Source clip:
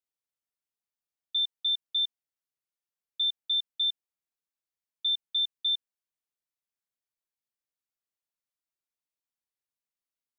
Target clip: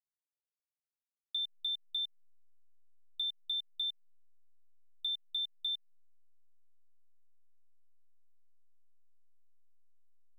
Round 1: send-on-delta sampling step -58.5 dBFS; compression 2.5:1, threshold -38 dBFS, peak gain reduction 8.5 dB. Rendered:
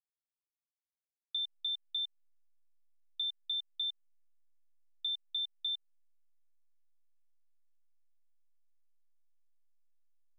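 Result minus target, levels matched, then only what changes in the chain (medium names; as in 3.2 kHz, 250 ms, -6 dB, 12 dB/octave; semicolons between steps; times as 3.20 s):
send-on-delta sampling: distortion -9 dB
change: send-on-delta sampling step -49 dBFS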